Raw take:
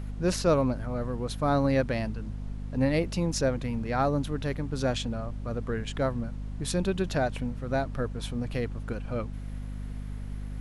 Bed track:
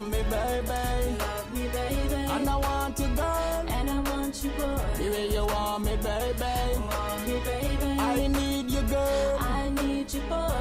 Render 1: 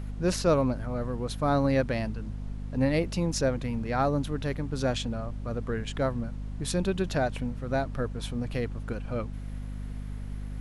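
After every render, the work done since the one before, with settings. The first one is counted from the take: no audible change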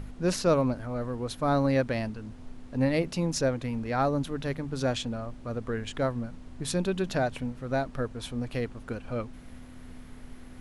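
de-hum 50 Hz, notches 4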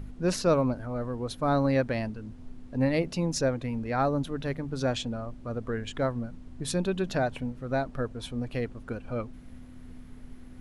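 noise reduction 6 dB, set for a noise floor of -47 dBFS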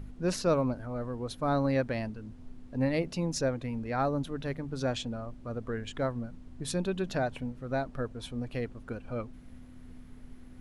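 trim -3 dB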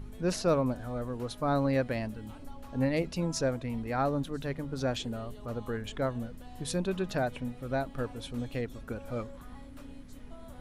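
add bed track -23.5 dB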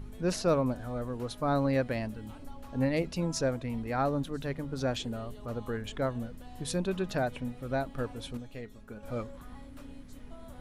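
8.37–9.03 s: feedback comb 210 Hz, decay 0.2 s, mix 70%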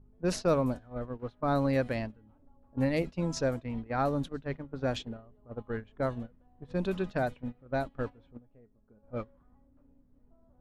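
gate -34 dBFS, range -16 dB; level-controlled noise filter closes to 800 Hz, open at -25 dBFS

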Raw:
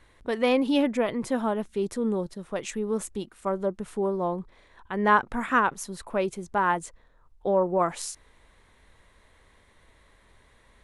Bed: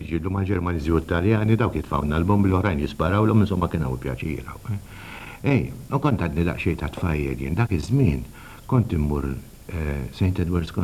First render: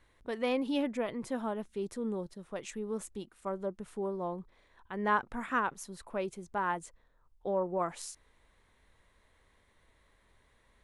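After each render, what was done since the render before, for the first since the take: trim -8.5 dB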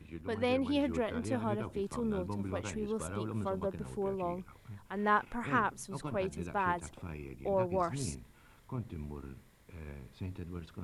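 add bed -20 dB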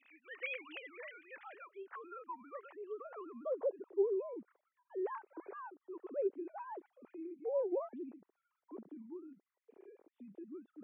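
formants replaced by sine waves; band-pass sweep 2.3 kHz -> 380 Hz, 1.34–4.12 s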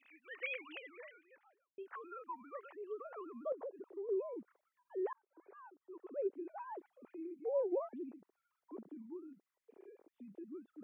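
0.62–1.78 s: studio fade out; 3.52–4.09 s: compression 4:1, threshold -43 dBFS; 5.13–7.16 s: fade in equal-power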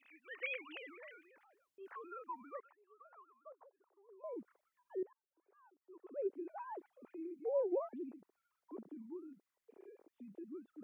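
0.77–1.96 s: transient shaper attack -10 dB, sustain +5 dB; 2.60–4.24 s: ladder band-pass 1.2 kHz, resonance 35%; 5.03–6.34 s: fade in quadratic, from -23 dB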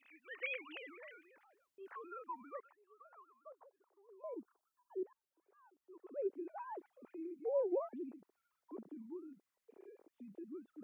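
4.34–5.04 s: static phaser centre 550 Hz, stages 6

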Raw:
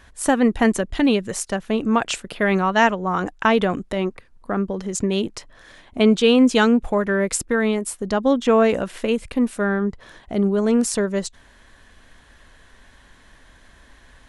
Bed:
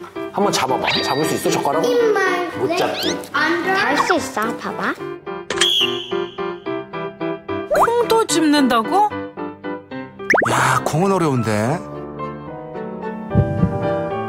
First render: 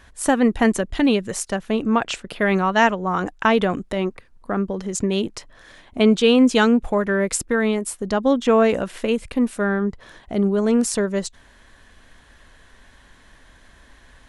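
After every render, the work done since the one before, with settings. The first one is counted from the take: 1.83–2.29 s: distance through air 61 m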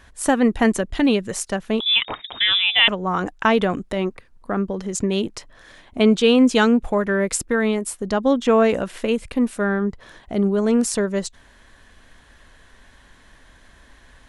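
1.80–2.88 s: frequency inversion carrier 3.7 kHz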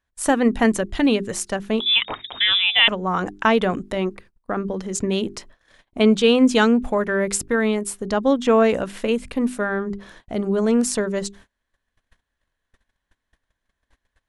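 hum notches 50/100/150/200/250/300/350/400 Hz; gate -44 dBFS, range -29 dB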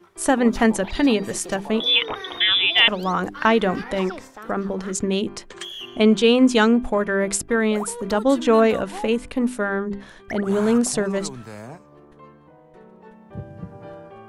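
add bed -19 dB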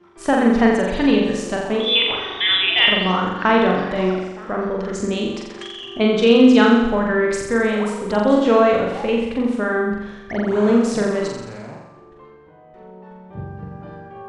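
distance through air 110 m; flutter echo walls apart 7.4 m, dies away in 0.96 s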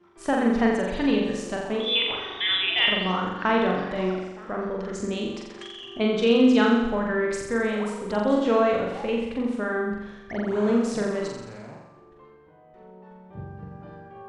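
trim -6.5 dB

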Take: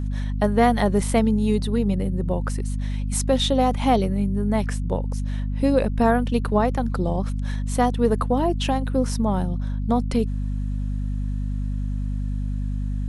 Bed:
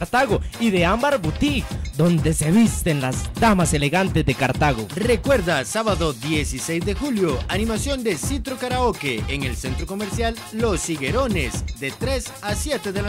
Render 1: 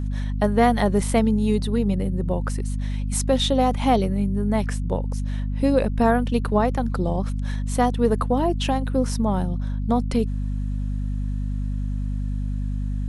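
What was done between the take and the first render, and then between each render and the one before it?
no audible change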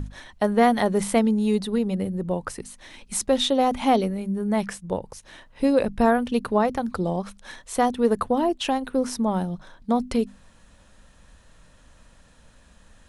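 hum notches 50/100/150/200/250 Hz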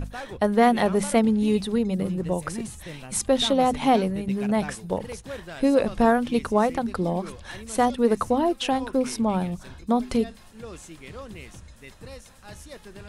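add bed -19 dB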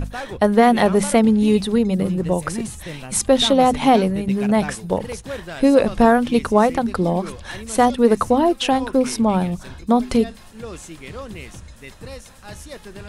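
trim +6 dB; peak limiter -2 dBFS, peak gain reduction 2.5 dB

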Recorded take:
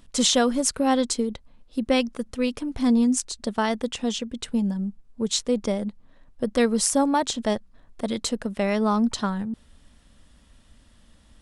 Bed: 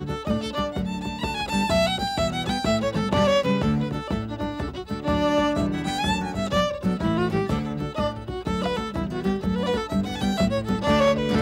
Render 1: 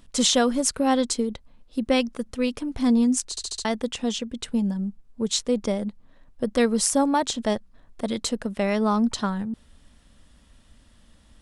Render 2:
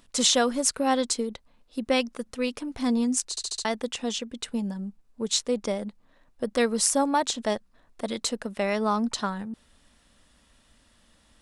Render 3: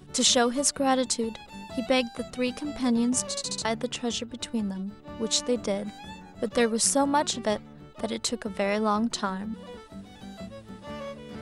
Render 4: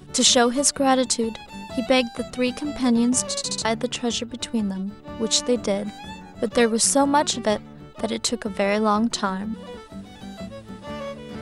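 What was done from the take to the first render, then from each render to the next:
3.30 s: stutter in place 0.07 s, 5 plays
bass shelf 250 Hz -10 dB; band-stop 3.2 kHz, Q 27
add bed -18.5 dB
trim +5 dB; peak limiter -2 dBFS, peak gain reduction 2.5 dB

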